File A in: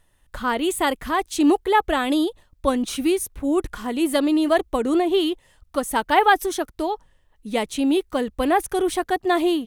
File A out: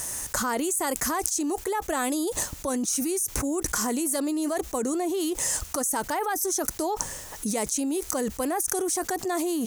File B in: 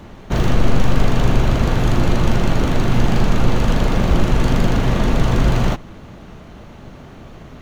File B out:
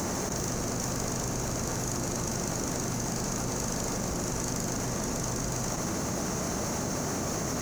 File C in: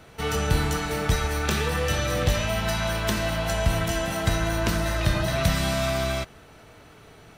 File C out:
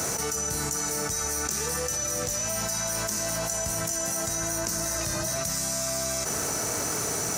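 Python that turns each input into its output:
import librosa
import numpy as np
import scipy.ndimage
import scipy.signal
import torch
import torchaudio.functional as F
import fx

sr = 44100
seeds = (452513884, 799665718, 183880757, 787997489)

y = fx.highpass(x, sr, hz=180.0, slope=6)
y = fx.high_shelf_res(y, sr, hz=4600.0, db=11.5, q=3.0)
y = fx.quant_dither(y, sr, seeds[0], bits=12, dither='triangular')
y = fx.env_flatten(y, sr, amount_pct=100)
y = y * librosa.db_to_amplitude(-14.0)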